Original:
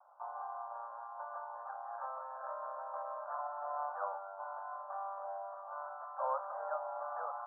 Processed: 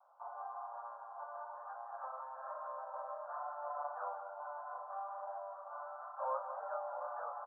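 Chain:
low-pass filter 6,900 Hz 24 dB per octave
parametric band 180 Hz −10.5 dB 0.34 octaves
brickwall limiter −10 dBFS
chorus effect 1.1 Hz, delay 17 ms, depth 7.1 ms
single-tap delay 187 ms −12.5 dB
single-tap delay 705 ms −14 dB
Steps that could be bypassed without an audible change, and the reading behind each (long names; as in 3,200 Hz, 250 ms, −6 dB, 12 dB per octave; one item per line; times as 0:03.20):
low-pass filter 6,900 Hz: nothing at its input above 1,700 Hz
parametric band 180 Hz: nothing at its input below 450 Hz
brickwall limiter −10 dBFS: peak of its input −23.5 dBFS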